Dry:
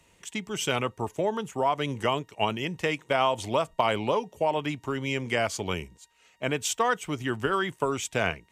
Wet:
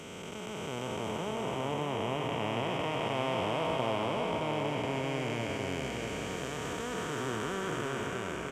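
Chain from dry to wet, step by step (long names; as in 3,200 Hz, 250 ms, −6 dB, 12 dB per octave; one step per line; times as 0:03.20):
spectrum smeared in time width 1,330 ms
single-tap delay 628 ms −5 dB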